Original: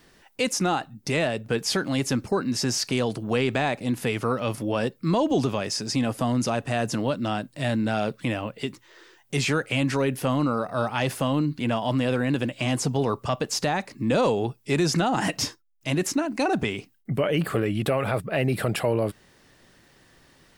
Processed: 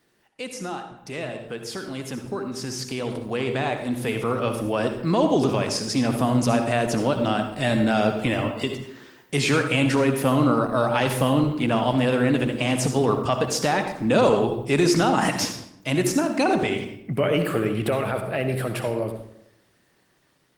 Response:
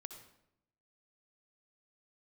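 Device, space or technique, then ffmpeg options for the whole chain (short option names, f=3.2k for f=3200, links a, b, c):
far-field microphone of a smart speaker: -filter_complex "[1:a]atrim=start_sample=2205[a];[0:a][a]afir=irnorm=-1:irlink=0,highpass=f=140:p=1,dynaudnorm=f=890:g=9:m=13dB,volume=-2dB" -ar 48000 -c:a libopus -b:a 24k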